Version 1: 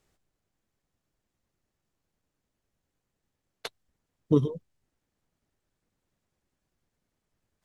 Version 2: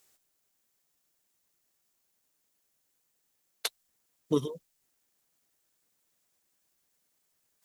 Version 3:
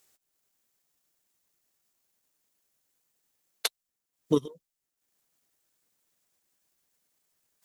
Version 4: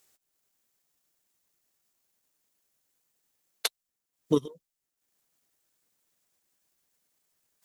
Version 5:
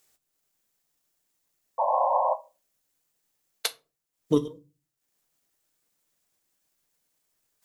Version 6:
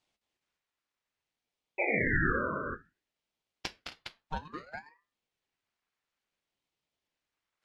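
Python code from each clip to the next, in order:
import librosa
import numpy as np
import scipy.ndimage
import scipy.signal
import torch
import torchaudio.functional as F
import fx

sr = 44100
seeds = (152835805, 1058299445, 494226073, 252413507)

y1 = fx.riaa(x, sr, side='recording')
y2 = fx.transient(y1, sr, attack_db=4, sustain_db=-10)
y3 = y2
y4 = fx.spec_paint(y3, sr, seeds[0], shape='noise', start_s=1.78, length_s=0.56, low_hz=500.0, high_hz=1100.0, level_db=-24.0)
y4 = fx.room_shoebox(y4, sr, seeds[1], volume_m3=120.0, walls='furnished', distance_m=0.46)
y5 = fx.bandpass_edges(y4, sr, low_hz=740.0, high_hz=2900.0)
y5 = fx.echo_multitap(y5, sr, ms=(213, 235, 266, 410), db=(-7.0, -12.5, -17.5, -7.0))
y5 = fx.ring_lfo(y5, sr, carrier_hz=970.0, swing_pct=55, hz=0.59)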